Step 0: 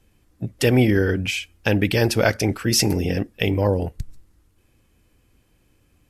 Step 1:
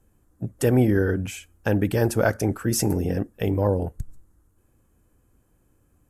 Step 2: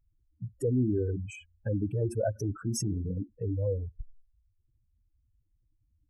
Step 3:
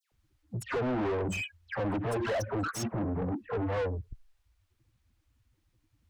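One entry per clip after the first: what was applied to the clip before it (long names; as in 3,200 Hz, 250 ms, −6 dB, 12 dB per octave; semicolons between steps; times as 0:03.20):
flat-topped bell 3,300 Hz −12 dB; level −2 dB
expanding power law on the bin magnitudes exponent 3.3; level −7.5 dB
soft clipping −30 dBFS, distortion −10 dB; all-pass dispersion lows, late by 122 ms, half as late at 1,800 Hz; mid-hump overdrive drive 29 dB, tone 2,600 Hz, clips at −21.5 dBFS; level −2 dB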